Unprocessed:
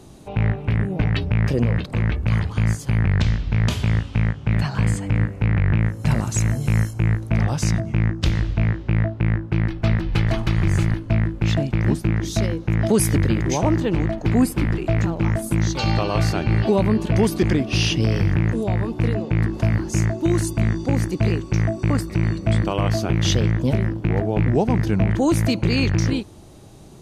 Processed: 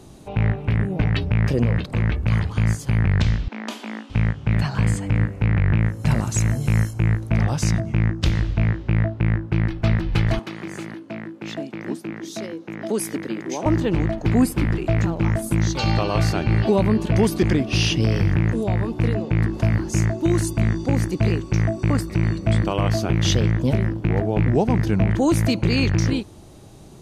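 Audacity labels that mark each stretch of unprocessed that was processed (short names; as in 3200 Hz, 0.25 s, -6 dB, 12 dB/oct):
3.480000	4.100000	rippled Chebyshev high-pass 210 Hz, ripple 6 dB
10.390000	13.660000	ladder high-pass 200 Hz, resonance 25%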